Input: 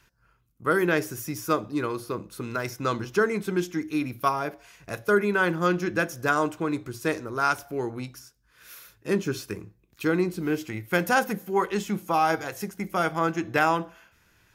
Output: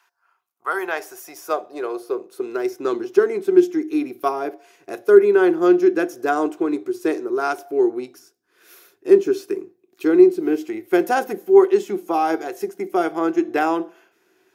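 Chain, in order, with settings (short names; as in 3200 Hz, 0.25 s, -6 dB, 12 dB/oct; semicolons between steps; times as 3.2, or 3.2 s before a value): 1.54–3.55 half-wave gain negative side -3 dB; small resonant body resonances 380/720 Hz, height 13 dB, ringing for 65 ms; high-pass sweep 950 Hz -> 330 Hz, 0.54–2.81; gain -2.5 dB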